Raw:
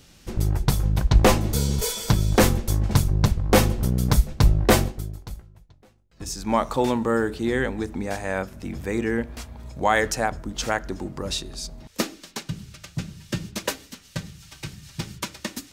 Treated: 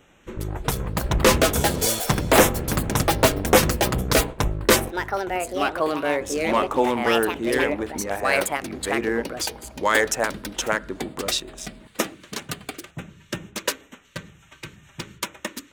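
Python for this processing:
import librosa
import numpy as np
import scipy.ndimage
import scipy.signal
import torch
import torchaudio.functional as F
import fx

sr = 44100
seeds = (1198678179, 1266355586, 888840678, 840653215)

y = fx.wiener(x, sr, points=9)
y = fx.filter_lfo_notch(y, sr, shape='square', hz=2.1, low_hz=740.0, high_hz=4500.0, q=2.2)
y = fx.echo_pitch(y, sr, ms=428, semitones=4, count=2, db_per_echo=-3.0)
y = fx.bass_treble(y, sr, bass_db=-12, treble_db=2)
y = y * 10.0 ** (3.5 / 20.0)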